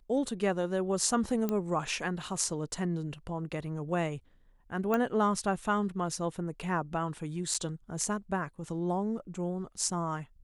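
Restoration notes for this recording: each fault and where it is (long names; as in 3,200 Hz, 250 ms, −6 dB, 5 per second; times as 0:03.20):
0:01.49: click −18 dBFS
0:04.94: click −17 dBFS
0:07.54–0:07.55: drop-out 5.3 ms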